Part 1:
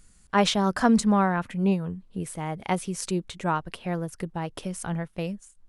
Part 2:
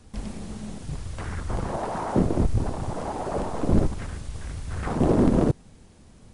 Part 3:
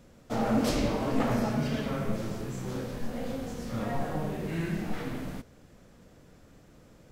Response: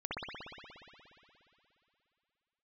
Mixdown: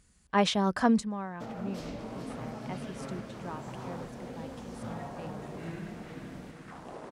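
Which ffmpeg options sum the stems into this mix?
-filter_complex "[0:a]bandreject=f=1400:w=18,volume=0.668,afade=t=out:st=0.9:d=0.2:silence=0.266073[s0];[1:a]highpass=730,adelay=1850,volume=0.211[s1];[2:a]alimiter=limit=0.0708:level=0:latency=1:release=483,adelay=1100,volume=0.422,asplit=2[s2][s3];[s3]volume=0.422,aecho=0:1:431|862|1293|1724|2155|2586|3017|3448|3879:1|0.59|0.348|0.205|0.121|0.0715|0.0422|0.0249|0.0147[s4];[s0][s1][s2][s4]amix=inputs=4:normalize=0,highpass=44,highshelf=f=9300:g=-9.5"

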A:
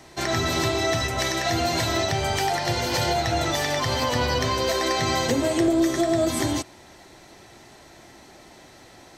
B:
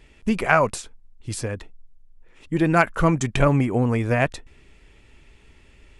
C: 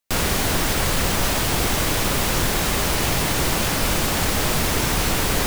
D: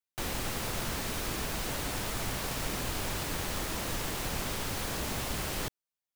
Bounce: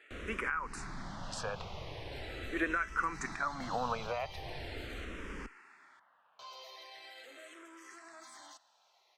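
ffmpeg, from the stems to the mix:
-filter_complex "[0:a]asoftclip=type=tanh:threshold=0.106,adelay=1950,volume=0.251,asplit=3[s0][s1][s2];[s0]atrim=end=5.05,asetpts=PTS-STARTPTS,afade=t=out:st=5.046:d=0.004:c=hsin[s3];[s1]atrim=start=5.05:end=6.39,asetpts=PTS-STARTPTS,volume=0[s4];[s2]atrim=start=6.39,asetpts=PTS-STARTPTS,afade=t=in:d=0.004:c=hsin[s5];[s3][s4][s5]concat=n=3:v=0:a=1[s6];[1:a]highpass=560,equalizer=f=1400:w=1.5:g=10.5,dynaudnorm=f=220:g=7:m=1.58,volume=0.841[s7];[2:a]lowpass=4900,volume=0.119[s8];[3:a]asoftclip=type=tanh:threshold=0.0398,lowpass=f=2200:w=0.5412,lowpass=f=2200:w=1.3066,adelay=2250,volume=0.106[s9];[s6][s9]amix=inputs=2:normalize=0,highpass=1100,alimiter=level_in=4.47:limit=0.0631:level=0:latency=1:release=25,volume=0.224,volume=1[s10];[s7][s8]amix=inputs=2:normalize=0,acrossover=split=130[s11][s12];[s12]acompressor=threshold=0.0562:ratio=5[s13];[s11][s13]amix=inputs=2:normalize=0,alimiter=limit=0.112:level=0:latency=1:release=231,volume=1[s14];[s10][s14]amix=inputs=2:normalize=0,highshelf=f=4800:g=-10.5,asplit=2[s15][s16];[s16]afreqshift=-0.41[s17];[s15][s17]amix=inputs=2:normalize=1"

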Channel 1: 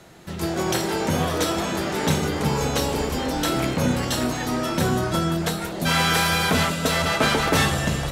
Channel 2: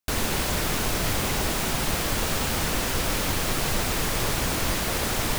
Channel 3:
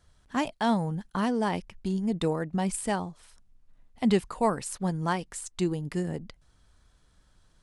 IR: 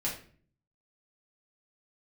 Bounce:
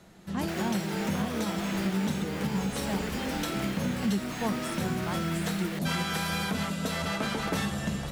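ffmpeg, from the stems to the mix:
-filter_complex "[0:a]volume=0.376[s0];[1:a]acrossover=split=3000[s1][s2];[s2]acompressor=threshold=0.00794:ratio=4:attack=1:release=60[s3];[s1][s3]amix=inputs=2:normalize=0,highpass=f=1400:w=0.5412,highpass=f=1400:w=1.3066,adelay=400,volume=0.531[s4];[2:a]volume=0.422[s5];[s0][s4][s5]amix=inputs=3:normalize=0,equalizer=f=200:t=o:w=0.28:g=12.5,alimiter=limit=0.106:level=0:latency=1:release=332"

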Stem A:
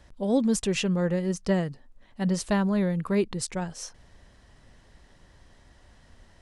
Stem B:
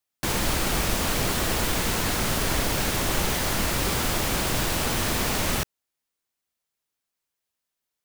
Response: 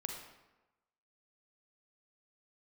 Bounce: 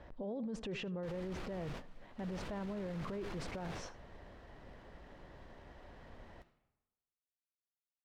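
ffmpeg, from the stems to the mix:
-filter_complex "[0:a]acompressor=threshold=0.0355:ratio=16,lowpass=3000,equalizer=f=550:w=0.52:g=8.5,volume=0.708,asplit=4[s0][s1][s2][s3];[s1]volume=0.0794[s4];[s2]volume=0.106[s5];[1:a]aemphasis=mode=reproduction:type=50fm,adynamicsmooth=sensitivity=6.5:basefreq=2600,adelay=800,volume=0.141,asplit=2[s6][s7];[s7]volume=0.0708[s8];[s3]apad=whole_len=390116[s9];[s6][s9]sidechaingate=range=0.0224:threshold=0.00562:ratio=16:detection=peak[s10];[2:a]atrim=start_sample=2205[s11];[s4][s8]amix=inputs=2:normalize=0[s12];[s12][s11]afir=irnorm=-1:irlink=0[s13];[s5]aecho=0:1:80:1[s14];[s0][s10][s13][s14]amix=inputs=4:normalize=0,alimiter=level_in=3.55:limit=0.0631:level=0:latency=1:release=11,volume=0.282"

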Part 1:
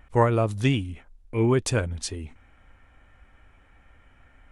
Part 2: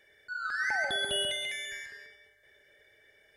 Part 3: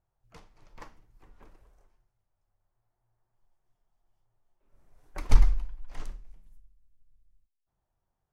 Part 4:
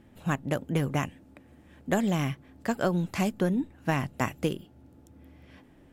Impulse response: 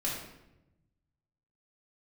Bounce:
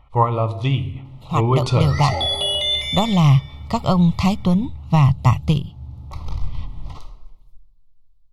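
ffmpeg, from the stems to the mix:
-filter_complex "[0:a]bass=f=250:g=3,treble=f=4000:g=-8,volume=0.708,asplit=3[s0][s1][s2];[s1]volume=0.224[s3];[1:a]adelay=1300,volume=1,asplit=2[s4][s5];[s5]volume=0.422[s6];[2:a]aeval=exprs='(tanh(14.1*val(0)+0.45)-tanh(0.45))/14.1':c=same,adelay=950,volume=0.501,asplit=2[s7][s8];[s8]volume=0.376[s9];[3:a]lowpass=11000,asubboost=boost=11.5:cutoff=130,adelay=1050,volume=1.26[s10];[s2]apad=whole_len=205809[s11];[s4][s11]sidechaincompress=threshold=0.0224:ratio=8:attack=16:release=205[s12];[4:a]atrim=start_sample=2205[s13];[s3][s6][s9]amix=inputs=3:normalize=0[s14];[s14][s13]afir=irnorm=-1:irlink=0[s15];[s0][s12][s7][s10][s15]amix=inputs=5:normalize=0,equalizer=f=125:t=o:w=1:g=5,equalizer=f=250:t=o:w=1:g=-7,equalizer=f=1000:t=o:w=1:g=10,equalizer=f=2000:t=o:w=1:g=-5,equalizer=f=4000:t=o:w=1:g=11,equalizer=f=8000:t=o:w=1:g=-6,dynaudnorm=f=200:g=11:m=2.11,asuperstop=centerf=1600:order=8:qfactor=2.9"

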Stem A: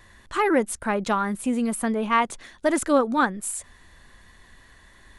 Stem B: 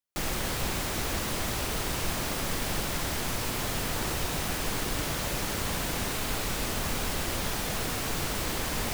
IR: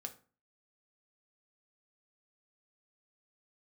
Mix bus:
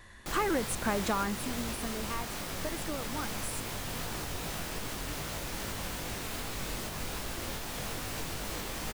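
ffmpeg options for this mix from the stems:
-filter_complex "[0:a]acompressor=threshold=0.0501:ratio=6,volume=0.891,afade=t=out:st=1.24:d=0.24:silence=0.354813[s0];[1:a]alimiter=limit=0.0891:level=0:latency=1:release=275,flanger=delay=18:depth=6.2:speed=2.5,adelay=100,volume=0.794[s1];[s0][s1]amix=inputs=2:normalize=0"

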